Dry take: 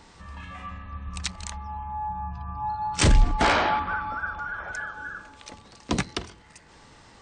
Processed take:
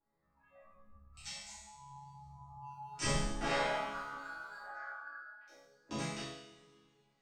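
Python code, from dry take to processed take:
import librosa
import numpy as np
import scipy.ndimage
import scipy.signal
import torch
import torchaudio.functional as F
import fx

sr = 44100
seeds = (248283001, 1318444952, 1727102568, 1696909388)

y = fx.wiener(x, sr, points=15)
y = fx.resonator_bank(y, sr, root=49, chord='minor', decay_s=0.79)
y = fx.noise_reduce_blind(y, sr, reduce_db=16)
y = fx.cabinet(y, sr, low_hz=450.0, low_slope=12, high_hz=3500.0, hz=(490.0, 750.0, 1100.0, 1600.0, 3200.0), db=(-10, 5, 9, 4, -4), at=(4.66, 5.47))
y = fx.rev_double_slope(y, sr, seeds[0], early_s=0.53, late_s=2.3, knee_db=-20, drr_db=-9.5)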